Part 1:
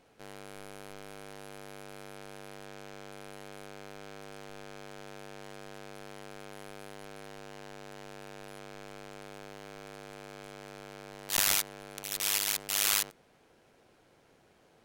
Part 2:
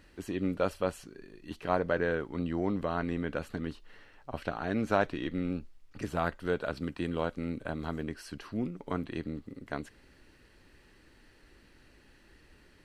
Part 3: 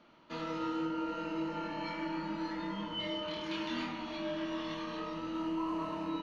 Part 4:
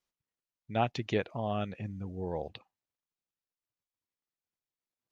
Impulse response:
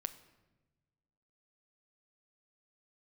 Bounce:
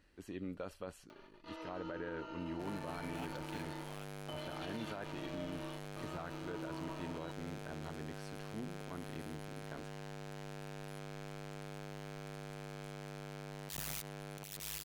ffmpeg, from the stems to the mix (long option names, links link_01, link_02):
-filter_complex "[0:a]equalizer=frequency=140:width_type=o:width=1.1:gain=10.5,volume=22dB,asoftclip=hard,volume=-22dB,adelay=2400,volume=-3dB[link_01];[1:a]volume=-10.5dB,asplit=2[link_02][link_03];[2:a]highpass=frequency=340:width=0.5412,highpass=frequency=340:width=1.3066,aecho=1:1:3.4:0.81,acompressor=mode=upward:threshold=-39dB:ratio=2.5,adelay=1100,volume=-10.5dB[link_04];[3:a]highpass=1100,aeval=exprs='val(0)*gte(abs(val(0)),0.0112)':channel_layout=same,adelay=2400,volume=-12.5dB[link_05];[link_03]apad=whole_len=323159[link_06];[link_04][link_06]sidechaingate=range=-33dB:threshold=-59dB:ratio=16:detection=peak[link_07];[link_01][link_02][link_07][link_05]amix=inputs=4:normalize=0,alimiter=level_in=8dB:limit=-24dB:level=0:latency=1:release=36,volume=-8dB"